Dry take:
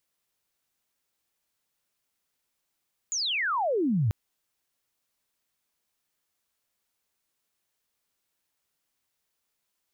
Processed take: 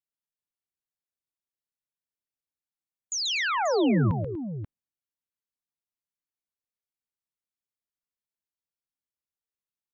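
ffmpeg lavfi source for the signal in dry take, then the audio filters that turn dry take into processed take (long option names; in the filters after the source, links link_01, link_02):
-f lavfi -i "aevalsrc='pow(10,(-26.5+5.5*t/0.99)/20)*sin(2*PI*7100*0.99/log(96/7100)*(exp(log(96/7100)*t/0.99)-1))':duration=0.99:sample_rate=44100"
-filter_complex "[0:a]afftdn=noise_reduction=22:noise_floor=-51,acrossover=split=350[link_01][link_02];[link_01]aeval=exprs='0.0891*sin(PI/2*1.41*val(0)/0.0891)':channel_layout=same[link_03];[link_03][link_02]amix=inputs=2:normalize=0,aecho=1:1:135|242|535:0.447|0.188|0.282"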